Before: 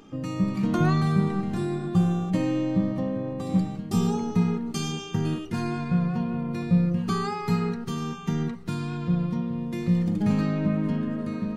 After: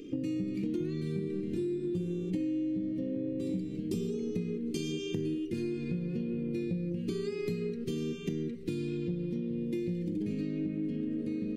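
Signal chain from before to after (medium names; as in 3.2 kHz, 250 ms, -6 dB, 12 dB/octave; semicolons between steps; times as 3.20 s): FFT filter 210 Hz 0 dB, 320 Hz +13 dB, 510 Hz +5 dB, 780 Hz -28 dB, 1.3 kHz -17 dB, 2.3 kHz +3 dB, 6.3 kHz -1 dB, 9.1 kHz +1 dB; compression 10:1, threshold -29 dBFS, peak gain reduction 17 dB; trim -1.5 dB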